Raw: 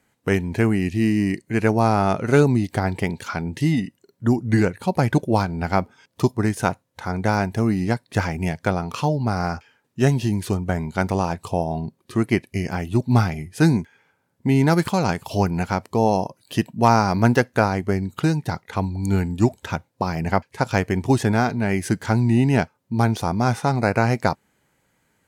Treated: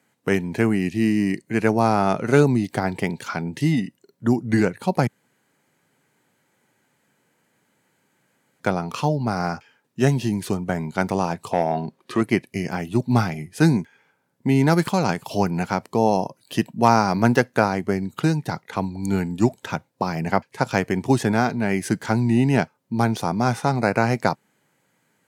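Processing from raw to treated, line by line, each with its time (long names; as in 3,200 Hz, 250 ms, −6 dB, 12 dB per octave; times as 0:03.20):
0:05.07–0:08.60: fill with room tone
0:11.51–0:12.21: mid-hump overdrive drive 15 dB, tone 2,600 Hz, clips at −8.5 dBFS
whole clip: high-pass filter 120 Hz 24 dB per octave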